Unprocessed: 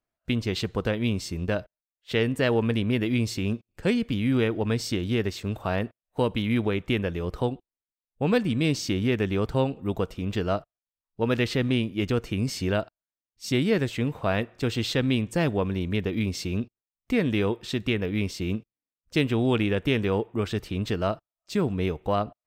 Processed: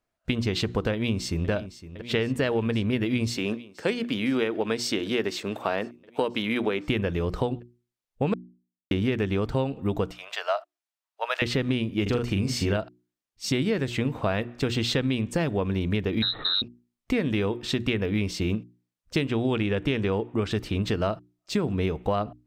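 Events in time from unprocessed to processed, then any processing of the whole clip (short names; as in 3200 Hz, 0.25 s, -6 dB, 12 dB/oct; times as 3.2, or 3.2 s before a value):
0.93–1.5 echo throw 0.51 s, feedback 85%, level -16 dB
3.36–6.88 HPF 280 Hz
8.34–8.91 mute
10.11–11.42 elliptic high-pass 630 Hz, stop band 70 dB
12.02–12.77 doubler 41 ms -4.5 dB
16.22–16.62 inverted band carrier 4000 Hz
19.27–20.51 LPF 9700 Hz
whole clip: high shelf 11000 Hz -8.5 dB; notches 60/120/180/240/300/360 Hz; compressor, threshold -27 dBFS; gain +5.5 dB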